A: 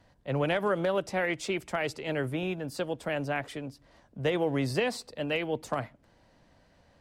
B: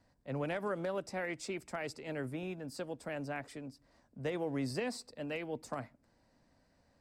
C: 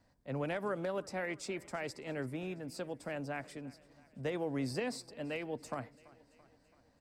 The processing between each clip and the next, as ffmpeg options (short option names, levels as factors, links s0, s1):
-af "equalizer=f=250:t=o:w=0.33:g=6,equalizer=f=3150:t=o:w=0.33:g=-7,equalizer=f=5000:t=o:w=0.33:g=5,equalizer=f=8000:t=o:w=0.33:g=6,volume=0.355"
-af "aecho=1:1:335|670|1005|1340|1675:0.0841|0.0496|0.0293|0.0173|0.0102"